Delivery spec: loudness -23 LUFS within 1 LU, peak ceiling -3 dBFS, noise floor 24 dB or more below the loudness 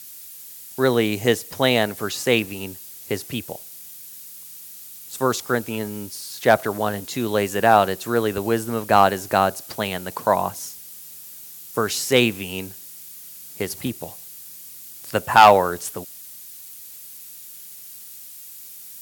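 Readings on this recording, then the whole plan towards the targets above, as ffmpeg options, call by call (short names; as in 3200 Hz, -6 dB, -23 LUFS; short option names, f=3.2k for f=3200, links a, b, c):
noise floor -41 dBFS; noise floor target -45 dBFS; loudness -21.0 LUFS; peak -2.5 dBFS; loudness target -23.0 LUFS
-> -af "afftdn=nr=6:nf=-41"
-af "volume=-2dB"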